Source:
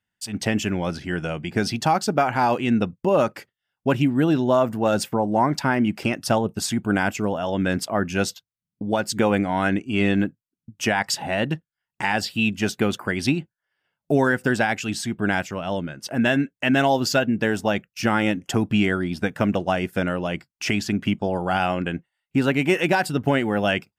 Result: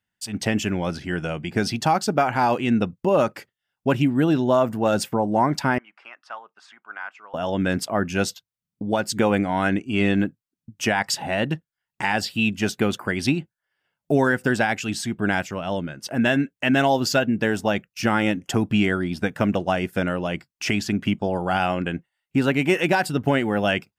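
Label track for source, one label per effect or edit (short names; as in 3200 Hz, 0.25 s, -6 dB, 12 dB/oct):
5.780000	7.340000	ladder band-pass 1400 Hz, resonance 45%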